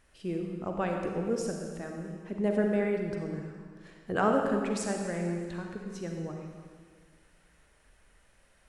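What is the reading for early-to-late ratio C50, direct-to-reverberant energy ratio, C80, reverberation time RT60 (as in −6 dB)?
2.5 dB, 1.5 dB, 3.5 dB, 1.7 s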